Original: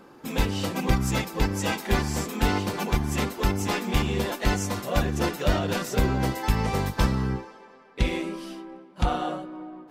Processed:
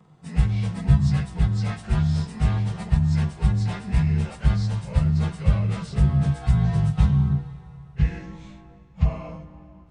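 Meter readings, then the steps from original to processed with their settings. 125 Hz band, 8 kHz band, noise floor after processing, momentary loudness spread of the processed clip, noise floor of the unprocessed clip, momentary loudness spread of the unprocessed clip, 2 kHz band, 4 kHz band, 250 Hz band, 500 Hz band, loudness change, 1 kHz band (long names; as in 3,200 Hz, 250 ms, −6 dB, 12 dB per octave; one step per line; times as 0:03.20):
+8.5 dB, below −10 dB, −48 dBFS, 9 LU, −51 dBFS, 10 LU, −8.5 dB, −9.0 dB, +1.0 dB, −10.0 dB, +3.5 dB, −9.0 dB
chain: partials spread apart or drawn together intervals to 89%
low shelf with overshoot 210 Hz +11.5 dB, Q 3
four-comb reverb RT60 3.4 s, combs from 29 ms, DRR 17 dB
level −6 dB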